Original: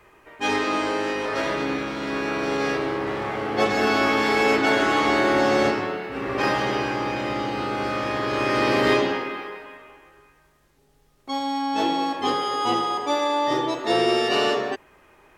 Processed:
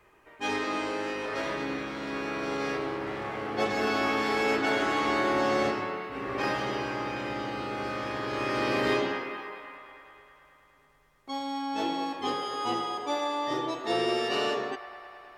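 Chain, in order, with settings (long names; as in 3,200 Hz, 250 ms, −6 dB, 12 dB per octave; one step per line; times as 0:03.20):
delay with a band-pass on its return 106 ms, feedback 83%, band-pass 1,300 Hz, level −13 dB
level −7 dB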